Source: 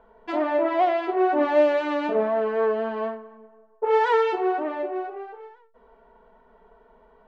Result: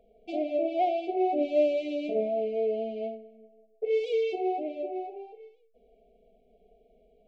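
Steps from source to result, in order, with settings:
linear-phase brick-wall band-stop 790–2,100 Hz
level −5 dB

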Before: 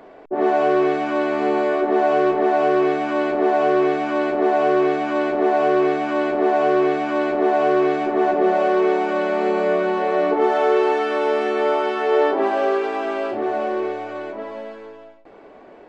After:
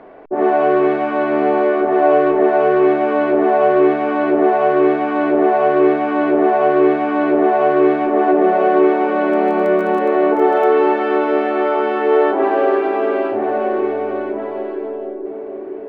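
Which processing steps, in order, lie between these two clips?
low-pass filter 2,400 Hz 12 dB per octave
0:09.32–0:10.64: surface crackle 36 per second → 11 per second −31 dBFS
on a send: feedback echo with a band-pass in the loop 468 ms, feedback 84%, band-pass 360 Hz, level −7 dB
on the sum: level +3.5 dB

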